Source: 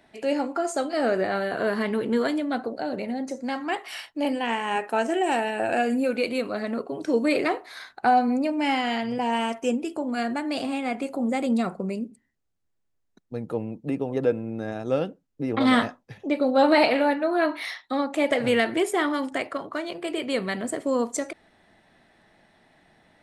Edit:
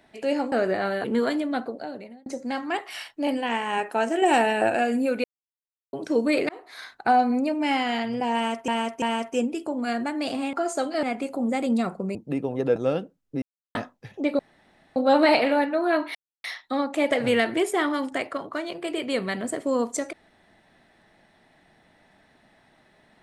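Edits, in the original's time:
0:00.52–0:01.02: move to 0:10.83
0:01.54–0:02.02: remove
0:02.53–0:03.24: fade out
0:05.20–0:05.68: clip gain +4.5 dB
0:06.22–0:06.91: silence
0:07.47–0:07.76: fade in
0:09.32–0:09.66: repeat, 3 plays
0:11.95–0:13.72: remove
0:14.33–0:14.82: remove
0:15.48–0:15.81: silence
0:16.45: splice in room tone 0.57 s
0:17.64: splice in silence 0.29 s

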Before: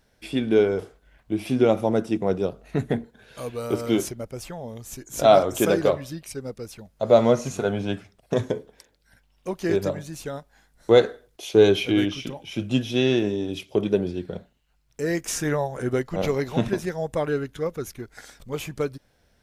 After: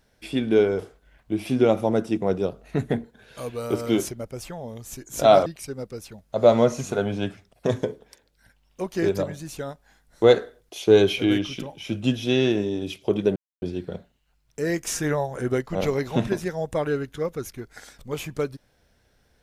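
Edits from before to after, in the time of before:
0:05.46–0:06.13: remove
0:14.03: splice in silence 0.26 s

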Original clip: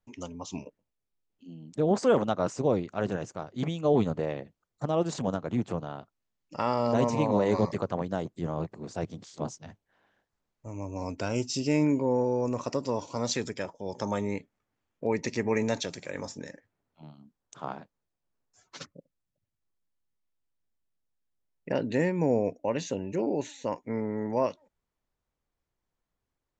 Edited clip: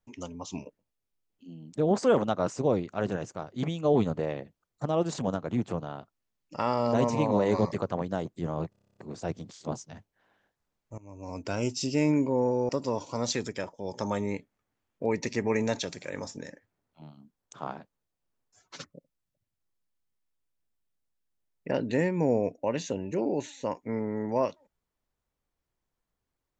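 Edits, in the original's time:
0:08.70: stutter 0.03 s, 10 plays
0:10.71–0:11.27: fade in, from −19 dB
0:12.42–0:12.70: remove

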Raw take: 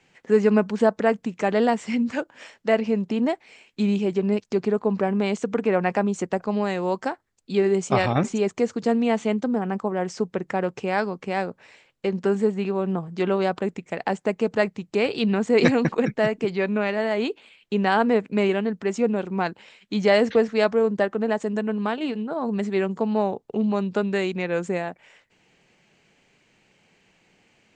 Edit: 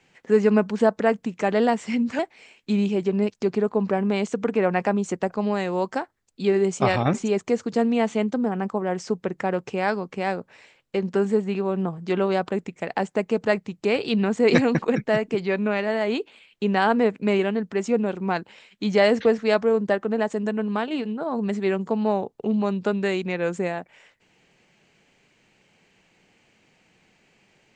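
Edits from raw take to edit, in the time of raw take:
0:02.19–0:03.29: remove

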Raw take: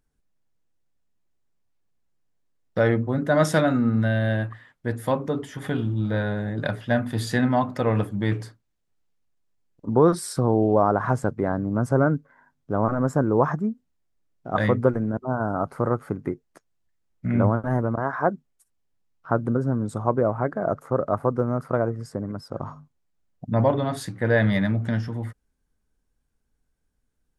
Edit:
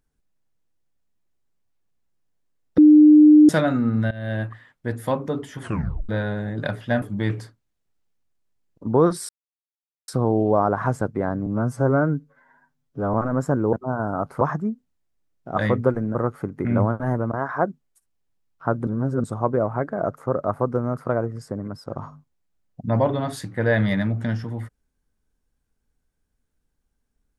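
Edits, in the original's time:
0:02.78–0:03.49: beep over 302 Hz −7 dBFS
0:04.11–0:04.42: fade in, from −19.5 dB
0:05.60: tape stop 0.49 s
0:07.02–0:08.04: remove
0:10.31: splice in silence 0.79 s
0:11.69–0:12.81: time-stretch 1.5×
0:15.14–0:15.82: move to 0:13.40
0:16.32–0:17.29: remove
0:19.51–0:19.88: reverse

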